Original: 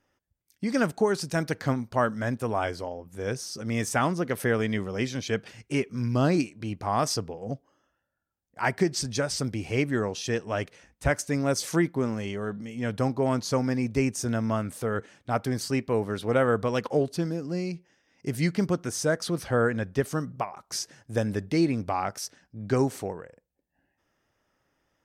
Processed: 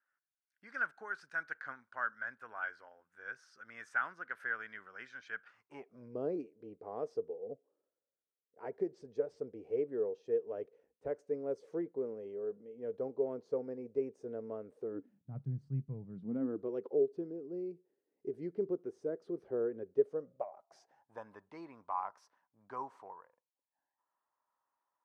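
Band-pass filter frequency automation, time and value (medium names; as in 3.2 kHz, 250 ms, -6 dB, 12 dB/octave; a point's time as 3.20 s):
band-pass filter, Q 7.7
5.43 s 1.5 kHz
6.16 s 450 Hz
14.78 s 450 Hz
15.34 s 140 Hz
16.03 s 140 Hz
16.71 s 400 Hz
19.90 s 400 Hz
21.24 s 1 kHz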